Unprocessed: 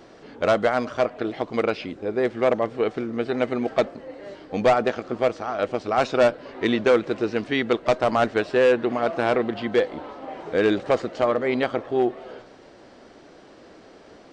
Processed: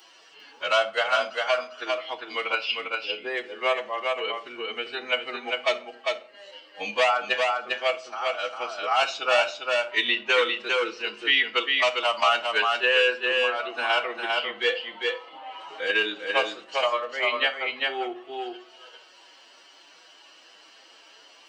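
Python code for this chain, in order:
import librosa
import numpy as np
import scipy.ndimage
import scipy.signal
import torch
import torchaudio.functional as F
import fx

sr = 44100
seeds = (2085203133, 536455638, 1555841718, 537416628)

p1 = fx.bin_expand(x, sr, power=1.5)
p2 = scipy.signal.sosfilt(scipy.signal.butter(2, 1000.0, 'highpass', fs=sr, output='sos'), p1)
p3 = fx.peak_eq(p2, sr, hz=2900.0, db=12.0, octaves=0.39)
p4 = fx.level_steps(p3, sr, step_db=15)
p5 = p3 + F.gain(torch.from_numpy(p4), 3.0).numpy()
p6 = fx.stretch_vocoder(p5, sr, factor=1.5)
p7 = p6 + fx.echo_single(p6, sr, ms=400, db=-4.5, dry=0)
p8 = fx.room_shoebox(p7, sr, seeds[0], volume_m3=390.0, walls='furnished', distance_m=0.64)
y = fx.band_squash(p8, sr, depth_pct=40)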